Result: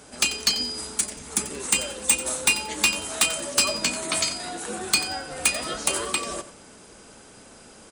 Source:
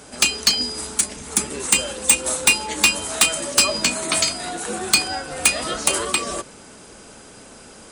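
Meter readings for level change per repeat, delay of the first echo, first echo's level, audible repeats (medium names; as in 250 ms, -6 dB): -11.5 dB, 90 ms, -14.0 dB, 2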